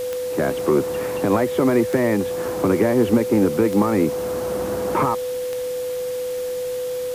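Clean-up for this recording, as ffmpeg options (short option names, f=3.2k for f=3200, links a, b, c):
-af "adeclick=t=4,bandreject=f=500:w=30,afwtdn=0.011"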